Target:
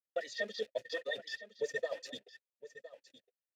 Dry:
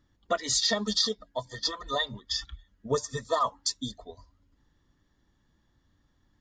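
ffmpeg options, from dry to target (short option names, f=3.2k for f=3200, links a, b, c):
-filter_complex "[0:a]aeval=exprs='val(0)+0.5*0.0126*sgn(val(0))':c=same,highpass=63,bandreject=f=60:t=h:w=6,bandreject=f=120:t=h:w=6,bandreject=f=180:t=h:w=6,bandreject=f=240:t=h:w=6,agate=range=-59dB:threshold=-34dB:ratio=16:detection=peak,highshelf=f=4k:g=9,areverse,acompressor=threshold=-29dB:ratio=16,areverse,asplit=3[a][b][c];[a]bandpass=f=530:t=q:w=8,volume=0dB[d];[b]bandpass=f=1.84k:t=q:w=8,volume=-6dB[e];[c]bandpass=f=2.48k:t=q:w=8,volume=-9dB[f];[d][e][f]amix=inputs=3:normalize=0,atempo=1.8,aecho=1:1:1012:0.178,volume=9dB"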